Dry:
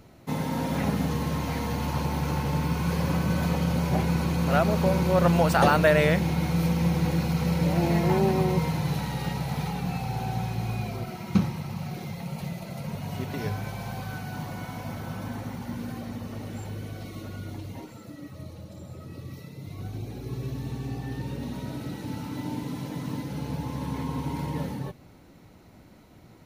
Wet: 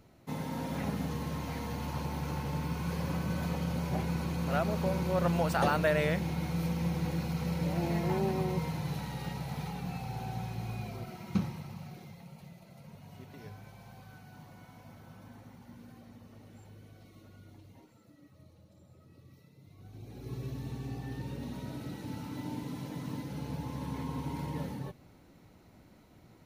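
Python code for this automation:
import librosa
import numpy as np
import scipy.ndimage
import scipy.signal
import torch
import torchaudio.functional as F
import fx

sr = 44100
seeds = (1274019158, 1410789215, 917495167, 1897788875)

y = fx.gain(x, sr, db=fx.line((11.52, -8.0), (12.44, -17.0), (19.8, -17.0), (20.3, -6.0)))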